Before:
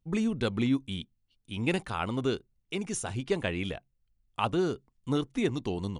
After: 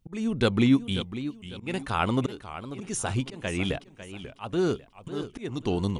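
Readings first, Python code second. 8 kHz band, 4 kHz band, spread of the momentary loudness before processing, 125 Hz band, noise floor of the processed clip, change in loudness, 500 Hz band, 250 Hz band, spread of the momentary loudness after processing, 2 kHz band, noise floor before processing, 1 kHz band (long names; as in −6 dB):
+3.5 dB, +3.0 dB, 11 LU, +4.0 dB, −54 dBFS, +3.0 dB, +1.5 dB, +3.5 dB, 15 LU, +2.0 dB, −75 dBFS, +2.5 dB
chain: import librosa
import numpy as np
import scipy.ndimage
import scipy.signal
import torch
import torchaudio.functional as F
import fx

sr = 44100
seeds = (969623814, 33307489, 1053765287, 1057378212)

y = fx.auto_swell(x, sr, attack_ms=373.0)
y = fx.echo_warbled(y, sr, ms=544, feedback_pct=34, rate_hz=2.8, cents=167, wet_db=-12.5)
y = y * 10.0 ** (6.5 / 20.0)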